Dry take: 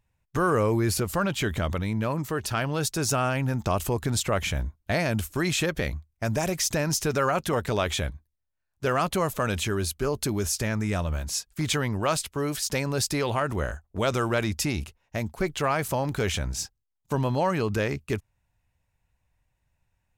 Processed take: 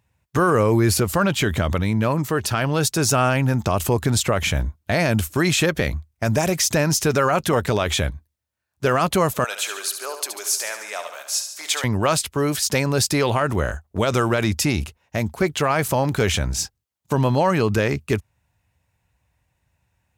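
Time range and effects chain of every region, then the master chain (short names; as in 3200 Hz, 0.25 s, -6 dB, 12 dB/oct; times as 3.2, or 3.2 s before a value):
9.44–11.84 HPF 620 Hz 24 dB/oct + bell 1300 Hz -4.5 dB 2.9 oct + feedback echo 71 ms, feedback 56%, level -8.5 dB
whole clip: HPF 56 Hz 24 dB/oct; maximiser +15 dB; gain -8 dB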